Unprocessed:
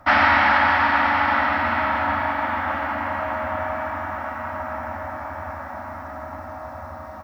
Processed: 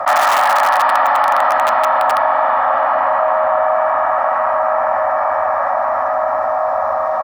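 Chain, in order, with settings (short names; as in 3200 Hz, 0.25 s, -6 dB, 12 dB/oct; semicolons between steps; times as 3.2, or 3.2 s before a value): tilt -4 dB/oct; comb 1.7 ms, depth 46%; dynamic EQ 2200 Hz, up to -6 dB, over -37 dBFS, Q 1.8; in parallel at -6.5 dB: wrapped overs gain 9.5 dB; on the sum: resonant high-pass 810 Hz, resonance Q 2; fast leveller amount 70%; gain -2 dB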